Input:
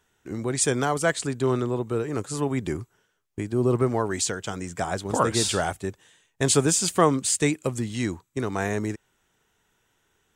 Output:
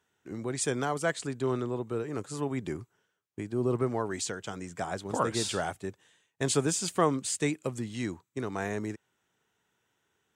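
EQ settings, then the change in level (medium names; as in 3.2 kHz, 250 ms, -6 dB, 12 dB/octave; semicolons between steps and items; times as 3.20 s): high-pass 98 Hz; treble shelf 7.3 kHz -5 dB; -6.0 dB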